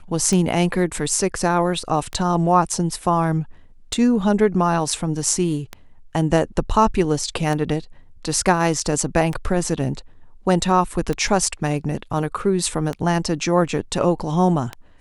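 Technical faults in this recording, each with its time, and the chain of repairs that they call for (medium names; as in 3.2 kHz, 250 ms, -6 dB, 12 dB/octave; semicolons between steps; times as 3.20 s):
tick 33 1/3 rpm -12 dBFS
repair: de-click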